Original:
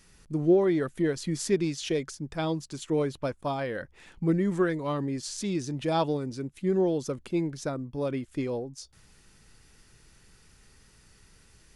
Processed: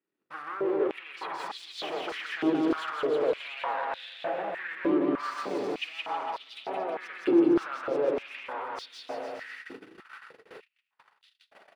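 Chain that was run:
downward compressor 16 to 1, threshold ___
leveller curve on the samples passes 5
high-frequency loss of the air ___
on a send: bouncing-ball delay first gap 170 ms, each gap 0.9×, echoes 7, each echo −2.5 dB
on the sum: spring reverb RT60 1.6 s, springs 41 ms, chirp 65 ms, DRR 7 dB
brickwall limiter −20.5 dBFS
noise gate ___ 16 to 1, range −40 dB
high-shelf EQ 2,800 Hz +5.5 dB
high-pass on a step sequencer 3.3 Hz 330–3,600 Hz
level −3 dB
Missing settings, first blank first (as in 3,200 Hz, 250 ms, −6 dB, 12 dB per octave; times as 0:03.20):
−35 dBFS, 500 metres, −33 dBFS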